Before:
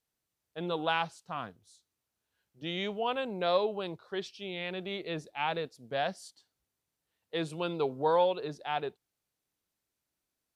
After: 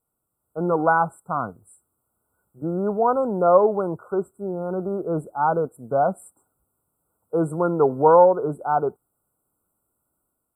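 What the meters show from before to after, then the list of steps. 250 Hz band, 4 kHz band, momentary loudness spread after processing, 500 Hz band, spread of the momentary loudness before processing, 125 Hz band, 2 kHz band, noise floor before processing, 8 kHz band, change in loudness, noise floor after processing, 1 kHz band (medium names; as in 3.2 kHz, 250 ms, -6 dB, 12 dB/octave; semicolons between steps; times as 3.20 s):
+12.5 dB, under -40 dB, 13 LU, +12.5 dB, 12 LU, +12.5 dB, +5.0 dB, under -85 dBFS, no reading, +11.5 dB, -78 dBFS, +12.5 dB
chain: dynamic bell 8.5 kHz, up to -5 dB, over -56 dBFS, Q 0.86; level rider gain up to 4.5 dB; brick-wall FIR band-stop 1.5–7.5 kHz; trim +8 dB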